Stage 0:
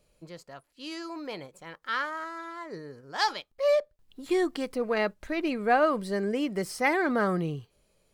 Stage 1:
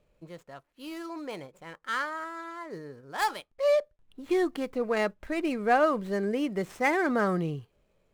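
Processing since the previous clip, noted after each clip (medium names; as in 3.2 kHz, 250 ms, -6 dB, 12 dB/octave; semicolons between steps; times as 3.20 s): median filter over 9 samples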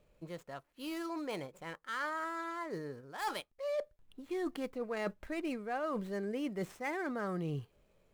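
treble shelf 11 kHz +3.5 dB; reverse; compression 8:1, threshold -34 dBFS, peak gain reduction 15.5 dB; reverse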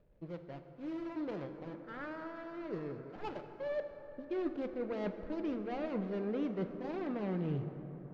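median filter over 41 samples; distance through air 240 m; plate-style reverb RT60 4 s, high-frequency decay 0.4×, DRR 7 dB; trim +2 dB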